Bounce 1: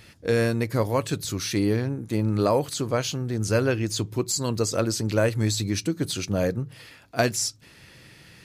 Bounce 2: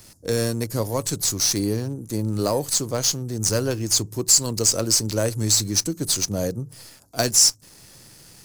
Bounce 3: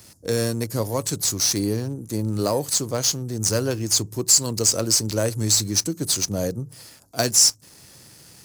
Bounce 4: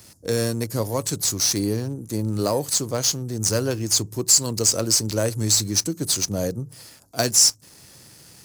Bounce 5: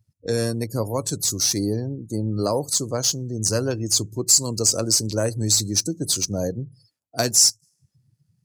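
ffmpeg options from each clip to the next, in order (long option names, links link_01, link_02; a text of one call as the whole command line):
ffmpeg -i in.wav -filter_complex "[0:a]highshelf=frequency=3900:width_type=q:width=1.5:gain=11,acrossover=split=310|1200|6200[link_01][link_02][link_03][link_04];[link_03]acrusher=bits=5:dc=4:mix=0:aa=0.000001[link_05];[link_01][link_02][link_05][link_04]amix=inputs=4:normalize=0,volume=-1dB" out.wav
ffmpeg -i in.wav -af "highpass=47" out.wav
ffmpeg -i in.wav -af anull out.wav
ffmpeg -i in.wav -af "afftdn=noise_reduction=35:noise_floor=-37" out.wav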